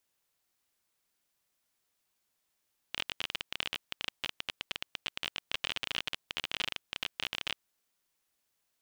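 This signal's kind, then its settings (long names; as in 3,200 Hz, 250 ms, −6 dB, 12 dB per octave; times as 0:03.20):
Geiger counter clicks 25 per second −16 dBFS 4.86 s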